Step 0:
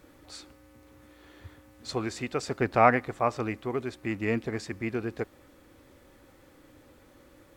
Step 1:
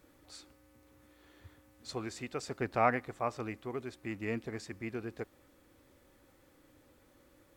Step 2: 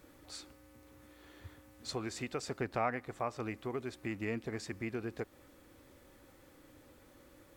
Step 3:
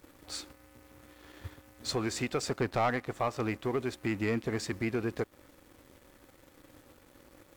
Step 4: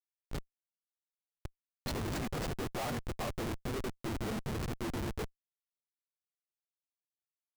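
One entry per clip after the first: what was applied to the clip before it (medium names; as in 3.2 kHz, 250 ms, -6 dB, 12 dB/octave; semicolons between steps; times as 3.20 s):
treble shelf 6.4 kHz +4.5 dB; trim -8 dB
compression 2:1, threshold -41 dBFS, peak gain reduction 11 dB; trim +4 dB
waveshaping leveller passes 2
phase randomisation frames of 50 ms; Schmitt trigger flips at -32 dBFS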